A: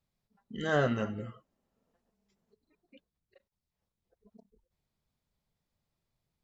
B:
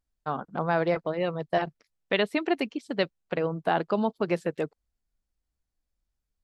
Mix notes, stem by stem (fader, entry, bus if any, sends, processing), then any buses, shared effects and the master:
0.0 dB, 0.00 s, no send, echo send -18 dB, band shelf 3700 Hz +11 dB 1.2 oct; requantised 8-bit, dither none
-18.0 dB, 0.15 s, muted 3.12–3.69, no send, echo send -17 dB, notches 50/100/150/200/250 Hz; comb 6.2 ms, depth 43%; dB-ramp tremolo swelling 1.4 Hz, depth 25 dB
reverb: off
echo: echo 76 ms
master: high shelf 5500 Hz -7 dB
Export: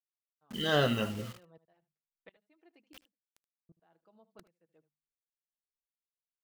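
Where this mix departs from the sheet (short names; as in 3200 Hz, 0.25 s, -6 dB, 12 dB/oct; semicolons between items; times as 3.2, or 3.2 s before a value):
stem B -18.0 dB -> -27.5 dB; master: missing high shelf 5500 Hz -7 dB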